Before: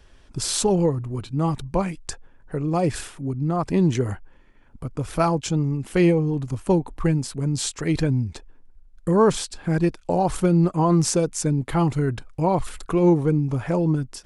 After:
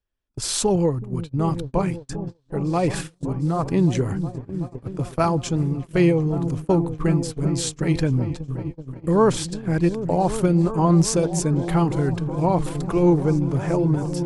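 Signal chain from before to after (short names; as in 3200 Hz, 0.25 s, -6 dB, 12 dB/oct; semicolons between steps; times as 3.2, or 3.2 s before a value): repeats that get brighter 0.375 s, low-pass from 200 Hz, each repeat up 1 oct, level -6 dB; 2.7–3.35 dynamic EQ 2100 Hz, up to +4 dB, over -40 dBFS, Q 0.81; gate -27 dBFS, range -32 dB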